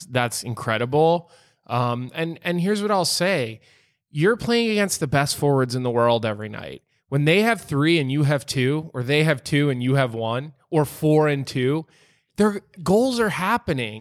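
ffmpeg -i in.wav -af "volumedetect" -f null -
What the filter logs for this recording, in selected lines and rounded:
mean_volume: -21.8 dB
max_volume: -6.2 dB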